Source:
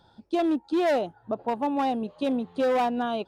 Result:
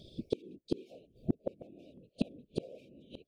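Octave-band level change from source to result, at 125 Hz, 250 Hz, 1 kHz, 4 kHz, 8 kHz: +4.0 dB, -12.5 dB, -33.5 dB, -13.5 dB, n/a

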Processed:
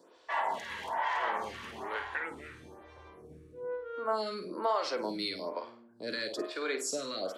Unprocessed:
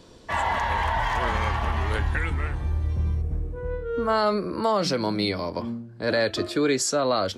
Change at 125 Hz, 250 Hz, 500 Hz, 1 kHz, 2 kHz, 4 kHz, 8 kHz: -28.5, -14.0, -10.0, -8.0, -8.0, -8.5, -9.5 dB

